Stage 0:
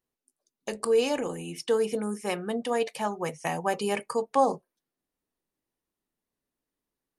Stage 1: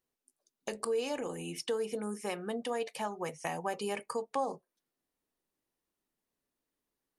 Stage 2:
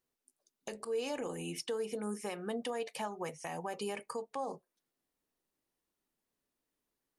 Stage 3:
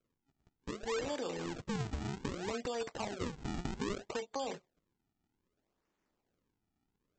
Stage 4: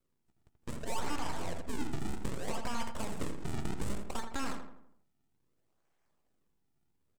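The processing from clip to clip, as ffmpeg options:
-af "bass=f=250:g=-3,treble=f=4k:g=0,acompressor=threshold=-37dB:ratio=2"
-af "alimiter=level_in=4dB:limit=-24dB:level=0:latency=1:release=164,volume=-4dB"
-filter_complex "[0:a]acrossover=split=360|730|3400[a][b][c][d];[a]acompressor=threshold=-53dB:ratio=4[e];[b]acompressor=threshold=-46dB:ratio=4[f];[c]acompressor=threshold=-53dB:ratio=4[g];[d]acompressor=threshold=-53dB:ratio=4[h];[e][f][g][h]amix=inputs=4:normalize=0,aresample=16000,acrusher=samples=17:mix=1:aa=0.000001:lfo=1:lforange=27.2:lforate=0.63,aresample=44100,volume=6.5dB"
-filter_complex "[0:a]aeval=exprs='abs(val(0))':c=same,asplit=2[a][b];[b]adelay=82,lowpass=f=2.2k:p=1,volume=-6dB,asplit=2[c][d];[d]adelay=82,lowpass=f=2.2k:p=1,volume=0.49,asplit=2[e][f];[f]adelay=82,lowpass=f=2.2k:p=1,volume=0.49,asplit=2[g][h];[h]adelay=82,lowpass=f=2.2k:p=1,volume=0.49,asplit=2[i][j];[j]adelay=82,lowpass=f=2.2k:p=1,volume=0.49,asplit=2[k][l];[l]adelay=82,lowpass=f=2.2k:p=1,volume=0.49[m];[a][c][e][g][i][k][m]amix=inputs=7:normalize=0,volume=3.5dB"

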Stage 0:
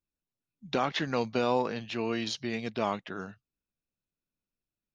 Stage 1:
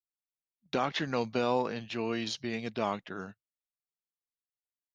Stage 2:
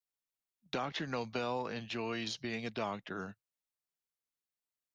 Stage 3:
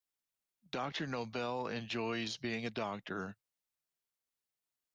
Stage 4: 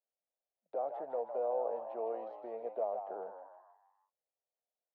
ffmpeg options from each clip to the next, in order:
-af "agate=range=-22dB:threshold=-42dB:ratio=16:detection=peak,volume=-1.5dB"
-filter_complex "[0:a]acrossover=split=120|650[a][b][c];[a]acompressor=threshold=-51dB:ratio=4[d];[b]acompressor=threshold=-39dB:ratio=4[e];[c]acompressor=threshold=-37dB:ratio=4[f];[d][e][f]amix=inputs=3:normalize=0"
-af "alimiter=level_in=4.5dB:limit=-24dB:level=0:latency=1:release=101,volume=-4.5dB,volume=1dB"
-filter_complex "[0:a]asuperpass=centerf=590:order=4:qfactor=2.4,asplit=6[a][b][c][d][e][f];[b]adelay=157,afreqshift=78,volume=-8dB[g];[c]adelay=314,afreqshift=156,volume=-14.6dB[h];[d]adelay=471,afreqshift=234,volume=-21.1dB[i];[e]adelay=628,afreqshift=312,volume=-27.7dB[j];[f]adelay=785,afreqshift=390,volume=-34.2dB[k];[a][g][h][i][j][k]amix=inputs=6:normalize=0,volume=8dB"

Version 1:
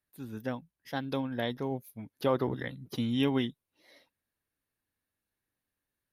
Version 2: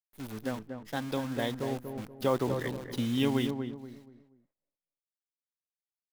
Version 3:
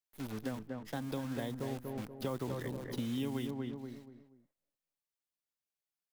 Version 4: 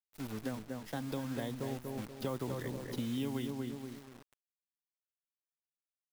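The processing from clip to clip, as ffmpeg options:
-filter_complex "[0:a]acrusher=bits=8:dc=4:mix=0:aa=0.000001,asplit=2[a][b];[b]adelay=239,lowpass=f=1.1k:p=1,volume=-6dB,asplit=2[c][d];[d]adelay=239,lowpass=f=1.1k:p=1,volume=0.34,asplit=2[e][f];[f]adelay=239,lowpass=f=1.1k:p=1,volume=0.34,asplit=2[g][h];[h]adelay=239,lowpass=f=1.1k:p=1,volume=0.34[i];[c][e][g][i]amix=inputs=4:normalize=0[j];[a][j]amix=inputs=2:normalize=0"
-filter_complex "[0:a]acrossover=split=260|1100|7000[a][b][c][d];[a]acompressor=threshold=-39dB:ratio=4[e];[b]acompressor=threshold=-41dB:ratio=4[f];[c]acompressor=threshold=-50dB:ratio=4[g];[d]acompressor=threshold=-54dB:ratio=4[h];[e][f][g][h]amix=inputs=4:normalize=0"
-af "acrusher=bits=8:mix=0:aa=0.000001"

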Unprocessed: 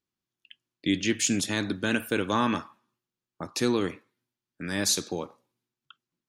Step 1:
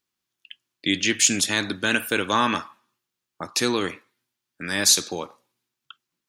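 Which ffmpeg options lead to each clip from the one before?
-af "tiltshelf=f=640:g=-5,volume=3.5dB"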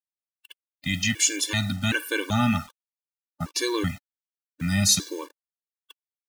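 -af "asubboost=boost=11.5:cutoff=150,acrusher=bits=6:mix=0:aa=0.000001,afftfilt=real='re*gt(sin(2*PI*1.3*pts/sr)*(1-2*mod(floor(b*sr/1024/300),2)),0)':imag='im*gt(sin(2*PI*1.3*pts/sr)*(1-2*mod(floor(b*sr/1024/300),2)),0)':win_size=1024:overlap=0.75"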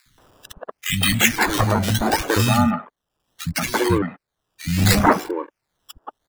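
-filter_complex "[0:a]asplit=2[a][b];[b]acompressor=mode=upward:threshold=-24dB:ratio=2.5,volume=1dB[c];[a][c]amix=inputs=2:normalize=0,acrusher=samples=14:mix=1:aa=0.000001:lfo=1:lforange=14:lforate=0.71,acrossover=split=200|1800[d][e][f];[d]adelay=60[g];[e]adelay=180[h];[g][h][f]amix=inputs=3:normalize=0,volume=1.5dB"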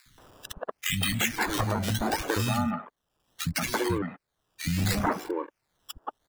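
-af "acompressor=threshold=-27dB:ratio=3"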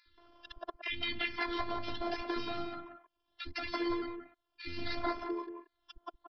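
-af "afftfilt=real='hypot(re,im)*cos(PI*b)':imag='0':win_size=512:overlap=0.75,aecho=1:1:178:0.376,aresample=11025,aresample=44100,volume=-4dB"

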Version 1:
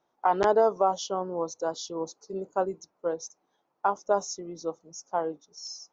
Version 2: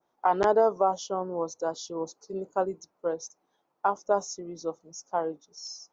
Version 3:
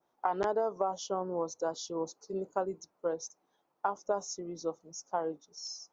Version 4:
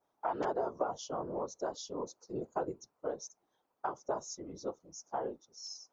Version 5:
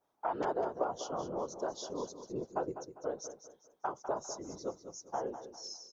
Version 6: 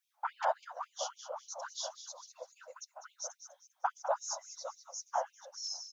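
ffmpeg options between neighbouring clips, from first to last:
-af "adynamicequalizer=threshold=0.00398:dfrequency=3600:dqfactor=0.92:tfrequency=3600:tqfactor=0.92:attack=5:release=100:ratio=0.375:range=3.5:mode=cutabove:tftype=bell"
-af "acompressor=threshold=-26dB:ratio=4,volume=-1.5dB"
-af "afftfilt=real='hypot(re,im)*cos(2*PI*random(0))':imag='hypot(re,im)*sin(2*PI*random(1))':win_size=512:overlap=0.75,volume=2.5dB"
-af "aecho=1:1:200|400|600|800:0.282|0.0958|0.0326|0.0111"
-af "afftfilt=real='re*gte(b*sr/1024,490*pow(2300/490,0.5+0.5*sin(2*PI*3.6*pts/sr)))':imag='im*gte(b*sr/1024,490*pow(2300/490,0.5+0.5*sin(2*PI*3.6*pts/sr)))':win_size=1024:overlap=0.75,volume=5.5dB"

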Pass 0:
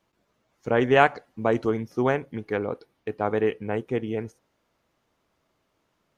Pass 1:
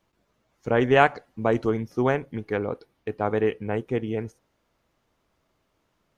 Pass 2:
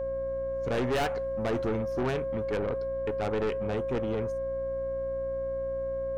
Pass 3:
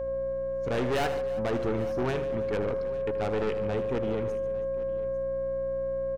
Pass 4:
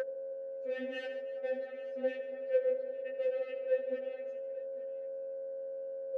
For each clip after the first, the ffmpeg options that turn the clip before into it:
-af "lowshelf=f=72:g=8.5"
-af "aeval=exprs='val(0)+0.0398*sin(2*PI*540*n/s)':c=same,aeval=exprs='(tanh(17.8*val(0)+0.25)-tanh(0.25))/17.8':c=same,aeval=exprs='val(0)+0.00708*(sin(2*PI*60*n/s)+sin(2*PI*2*60*n/s)/2+sin(2*PI*3*60*n/s)/3+sin(2*PI*4*60*n/s)/4+sin(2*PI*5*60*n/s)/5)':c=same"
-af "aecho=1:1:78|144|323|850:0.237|0.2|0.112|0.119"
-filter_complex "[0:a]asplit=3[a][b][c];[a]bandpass=f=530:t=q:w=8,volume=0dB[d];[b]bandpass=f=1.84k:t=q:w=8,volume=-6dB[e];[c]bandpass=f=2.48k:t=q:w=8,volume=-9dB[f];[d][e][f]amix=inputs=3:normalize=0,aeval=exprs='val(0)+0.0178*sin(2*PI*1600*n/s)':c=same,afftfilt=real='re*3.46*eq(mod(b,12),0)':imag='im*3.46*eq(mod(b,12),0)':win_size=2048:overlap=0.75,volume=4.5dB"

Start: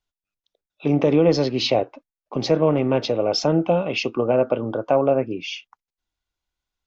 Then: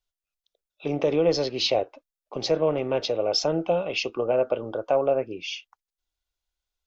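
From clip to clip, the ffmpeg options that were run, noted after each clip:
-af "equalizer=f=125:t=o:w=1:g=-9,equalizer=f=250:t=o:w=1:g=-10,equalizer=f=1k:t=o:w=1:g=-5,equalizer=f=2k:t=o:w=1:g=-4"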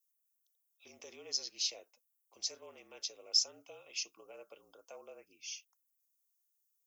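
-af "aexciter=amount=6.6:drive=2.3:freq=5.5k,aderivative,afreqshift=-46,volume=-8.5dB"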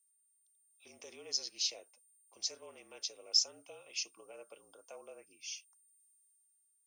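-af "aeval=exprs='val(0)+0.000447*sin(2*PI*9000*n/s)':c=same,dynaudnorm=f=130:g=11:m=5.5dB,volume=-5dB"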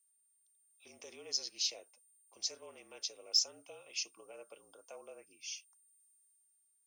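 -af "asoftclip=type=tanh:threshold=-16.5dB"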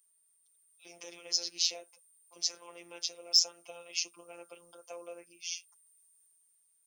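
-af "afftfilt=real='hypot(re,im)*cos(PI*b)':imag='0':win_size=1024:overlap=0.75,volume=8.5dB"

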